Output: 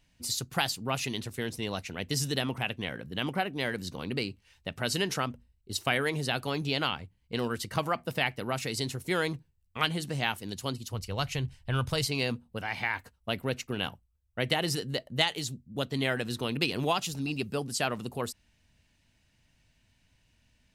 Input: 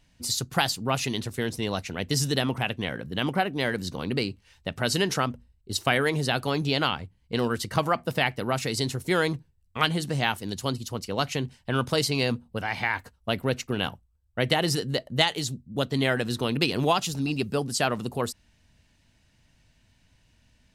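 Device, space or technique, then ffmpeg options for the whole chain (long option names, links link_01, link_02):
presence and air boost: -filter_complex "[0:a]asplit=3[link_01][link_02][link_03];[link_01]afade=type=out:start_time=10.92:duration=0.02[link_04];[link_02]asubboost=boost=8.5:cutoff=84,afade=type=in:start_time=10.92:duration=0.02,afade=type=out:start_time=12.06:duration=0.02[link_05];[link_03]afade=type=in:start_time=12.06:duration=0.02[link_06];[link_04][link_05][link_06]amix=inputs=3:normalize=0,equalizer=frequency=2500:width_type=o:width=0.77:gain=3,highshelf=frequency=10000:gain=4.5,volume=-5.5dB"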